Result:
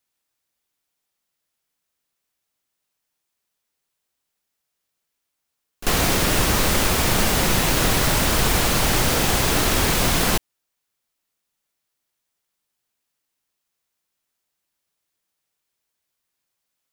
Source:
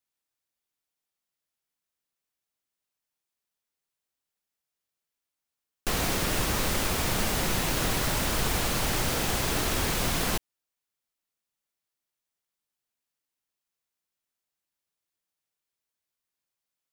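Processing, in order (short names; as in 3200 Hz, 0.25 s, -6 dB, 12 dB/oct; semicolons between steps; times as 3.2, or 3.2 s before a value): reverse echo 43 ms -16.5 dB; gain +8 dB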